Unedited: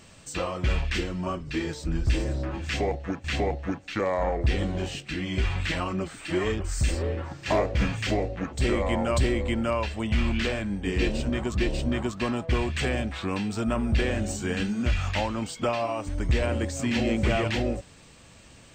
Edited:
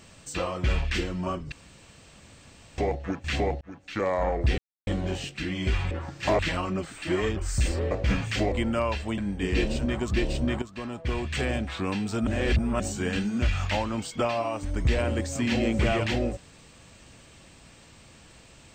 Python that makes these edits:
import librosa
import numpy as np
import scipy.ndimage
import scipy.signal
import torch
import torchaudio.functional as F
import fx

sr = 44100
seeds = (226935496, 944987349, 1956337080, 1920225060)

y = fx.edit(x, sr, fx.room_tone_fill(start_s=1.52, length_s=1.26),
    fx.fade_in_span(start_s=3.61, length_s=0.44),
    fx.insert_silence(at_s=4.58, length_s=0.29),
    fx.move(start_s=7.14, length_s=0.48, to_s=5.62),
    fx.cut(start_s=8.23, length_s=1.2),
    fx.cut(start_s=10.09, length_s=0.53),
    fx.fade_in_from(start_s=12.06, length_s=0.96, floor_db=-12.5),
    fx.reverse_span(start_s=13.71, length_s=0.53), tone=tone)